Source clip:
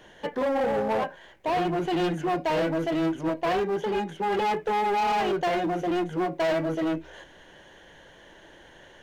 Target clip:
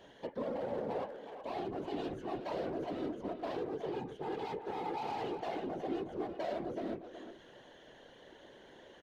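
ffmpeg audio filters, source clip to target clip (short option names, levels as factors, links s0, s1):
-filter_complex "[0:a]equalizer=f=250:t=o:w=1:g=9,equalizer=f=500:t=o:w=1:g=8,equalizer=f=1000:t=o:w=1:g=3,equalizer=f=4000:t=o:w=1:g=8,acompressor=threshold=0.00891:ratio=1.5,afftfilt=real='hypot(re,im)*cos(2*PI*random(0))':imag='hypot(re,im)*sin(2*PI*random(1))':win_size=512:overlap=0.75,asplit=2[s0][s1];[s1]adelay=370,highpass=300,lowpass=3400,asoftclip=type=hard:threshold=0.0376,volume=0.398[s2];[s0][s2]amix=inputs=2:normalize=0,volume=0.501"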